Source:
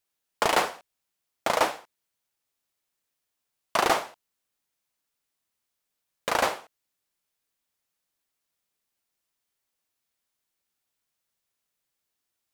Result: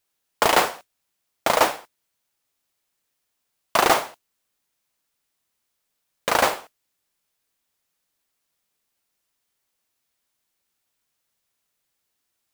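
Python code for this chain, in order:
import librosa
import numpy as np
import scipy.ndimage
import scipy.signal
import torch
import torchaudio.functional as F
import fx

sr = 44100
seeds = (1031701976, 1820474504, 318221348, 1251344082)

y = fx.mod_noise(x, sr, seeds[0], snr_db=14)
y = F.gain(torch.from_numpy(y), 5.0).numpy()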